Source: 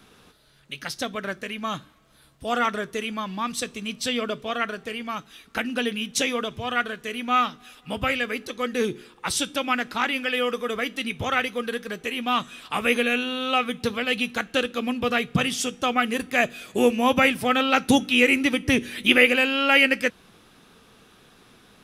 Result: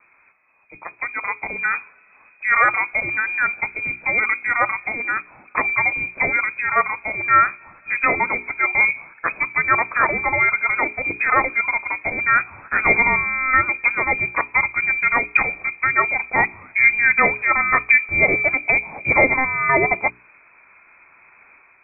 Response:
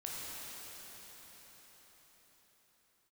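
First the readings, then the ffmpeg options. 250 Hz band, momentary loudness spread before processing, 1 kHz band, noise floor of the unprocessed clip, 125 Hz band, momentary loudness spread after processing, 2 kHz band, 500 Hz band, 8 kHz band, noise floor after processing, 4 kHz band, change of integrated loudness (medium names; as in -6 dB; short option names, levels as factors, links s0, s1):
-8.5 dB, 13 LU, +6.0 dB, -55 dBFS, +1.0 dB, 9 LU, +8.5 dB, -1.5 dB, under -40 dB, -53 dBFS, under -40 dB, +5.5 dB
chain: -af "lowpass=f=2200:t=q:w=0.5098,lowpass=f=2200:t=q:w=0.6013,lowpass=f=2200:t=q:w=0.9,lowpass=f=2200:t=q:w=2.563,afreqshift=-2600,bandreject=f=60:t=h:w=6,bandreject=f=120:t=h:w=6,bandreject=f=180:t=h:w=6,bandreject=f=240:t=h:w=6,bandreject=f=300:t=h:w=6,bandreject=f=360:t=h:w=6,bandreject=f=420:t=h:w=6,dynaudnorm=f=860:g=3:m=3.76,volume=0.891"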